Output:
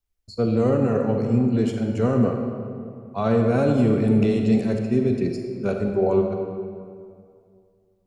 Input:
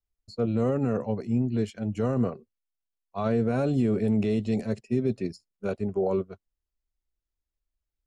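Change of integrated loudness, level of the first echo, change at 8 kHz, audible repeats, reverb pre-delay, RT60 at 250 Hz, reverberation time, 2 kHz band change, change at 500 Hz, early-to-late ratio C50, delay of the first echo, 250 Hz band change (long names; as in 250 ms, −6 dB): +6.0 dB, no echo audible, can't be measured, no echo audible, 35 ms, 2.5 s, 2.3 s, +6.5 dB, +6.5 dB, 4.0 dB, no echo audible, +6.0 dB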